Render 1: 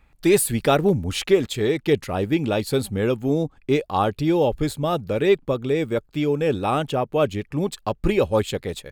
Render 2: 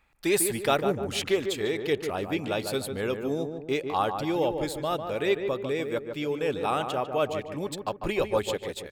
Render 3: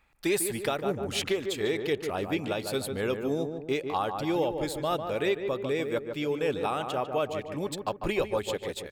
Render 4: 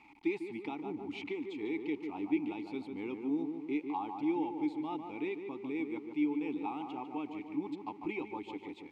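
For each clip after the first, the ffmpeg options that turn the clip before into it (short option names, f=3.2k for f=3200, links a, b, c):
-filter_complex "[0:a]lowshelf=f=360:g=-11,asplit=2[a][b];[b]adelay=148,lowpass=f=1.5k:p=1,volume=-6dB,asplit=2[c][d];[d]adelay=148,lowpass=f=1.5k:p=1,volume=0.46,asplit=2[e][f];[f]adelay=148,lowpass=f=1.5k:p=1,volume=0.46,asplit=2[g][h];[h]adelay=148,lowpass=f=1.5k:p=1,volume=0.46,asplit=2[i][j];[j]adelay=148,lowpass=f=1.5k:p=1,volume=0.46,asplit=2[k][l];[l]adelay=148,lowpass=f=1.5k:p=1,volume=0.46[m];[c][e][g][i][k][m]amix=inputs=6:normalize=0[n];[a][n]amix=inputs=2:normalize=0,volume=-3dB"
-af "alimiter=limit=-17.5dB:level=0:latency=1:release=316"
-filter_complex "[0:a]aeval=exprs='val(0)+0.5*0.00794*sgn(val(0))':c=same,acrossover=split=6800[a][b];[b]acompressor=threshold=-51dB:ratio=4:attack=1:release=60[c];[a][c]amix=inputs=2:normalize=0,asplit=3[d][e][f];[d]bandpass=f=300:t=q:w=8,volume=0dB[g];[e]bandpass=f=870:t=q:w=8,volume=-6dB[h];[f]bandpass=f=2.24k:t=q:w=8,volume=-9dB[i];[g][h][i]amix=inputs=3:normalize=0,volume=3dB"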